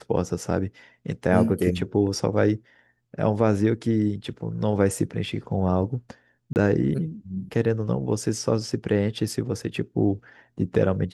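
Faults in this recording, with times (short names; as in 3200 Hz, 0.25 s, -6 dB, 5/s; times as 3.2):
6.53–6.56 gap 29 ms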